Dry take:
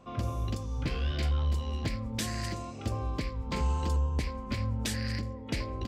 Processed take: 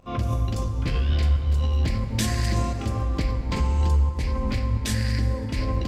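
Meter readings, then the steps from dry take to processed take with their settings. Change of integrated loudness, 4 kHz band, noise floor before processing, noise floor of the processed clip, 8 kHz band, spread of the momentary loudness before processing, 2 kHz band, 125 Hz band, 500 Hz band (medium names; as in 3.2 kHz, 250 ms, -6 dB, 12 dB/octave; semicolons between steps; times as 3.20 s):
+8.0 dB, +5.0 dB, -42 dBFS, -30 dBFS, +6.0 dB, 6 LU, +5.5 dB, +8.5 dB, +6.0 dB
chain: bass shelf 74 Hz +11.5 dB; de-hum 48.06 Hz, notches 33; in parallel at +1.5 dB: compressor with a negative ratio -34 dBFS, ratio -1; on the sum: crackle 21 per s -42 dBFS; volume shaper 88 bpm, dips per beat 1, -20 dB, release 177 ms; plate-style reverb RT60 3.6 s, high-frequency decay 0.45×, DRR 6 dB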